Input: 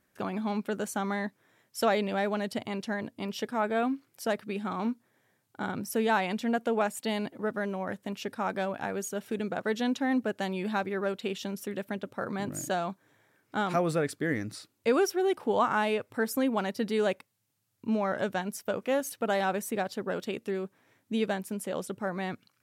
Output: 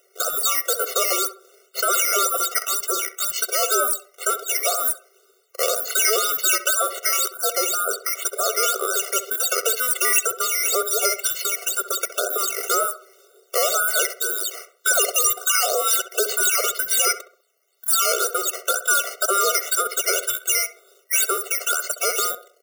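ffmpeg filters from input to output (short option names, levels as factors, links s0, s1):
-filter_complex "[0:a]afftfilt=real='real(if(between(b,1,1012),(2*floor((b-1)/92)+1)*92-b,b),0)':imag='imag(if(between(b,1,1012),(2*floor((b-1)/92)+1)*92-b,b),0)*if(between(b,1,1012),-1,1)':win_size=2048:overlap=0.75,equalizer=f=350:t=o:w=2.5:g=12.5,acrossover=split=4200[s0][s1];[s0]alimiter=limit=0.106:level=0:latency=1:release=103[s2];[s2][s1]amix=inputs=2:normalize=0,acrusher=samples=8:mix=1:aa=0.000001:lfo=1:lforange=8:lforate=2,bass=f=250:g=2,treble=f=4000:g=12,asplit=2[s3][s4];[s4]adelay=66,lowpass=f=1500:p=1,volume=0.335,asplit=2[s5][s6];[s6]adelay=66,lowpass=f=1500:p=1,volume=0.42,asplit=2[s7][s8];[s8]adelay=66,lowpass=f=1500:p=1,volume=0.42,asplit=2[s9][s10];[s10]adelay=66,lowpass=f=1500:p=1,volume=0.42,asplit=2[s11][s12];[s12]adelay=66,lowpass=f=1500:p=1,volume=0.42[s13];[s5][s7][s9][s11][s13]amix=inputs=5:normalize=0[s14];[s3][s14]amix=inputs=2:normalize=0,afftfilt=real='re*eq(mod(floor(b*sr/1024/380),2),1)':imag='im*eq(mod(floor(b*sr/1024/380),2),1)':win_size=1024:overlap=0.75,volume=2.37"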